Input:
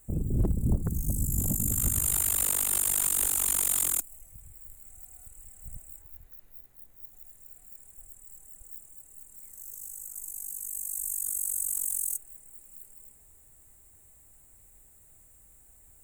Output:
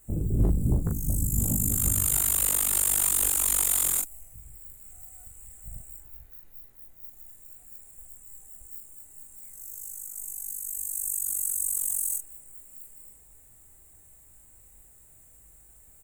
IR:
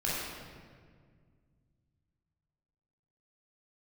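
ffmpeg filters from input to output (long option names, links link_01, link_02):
-af "aecho=1:1:18|40:0.562|0.631"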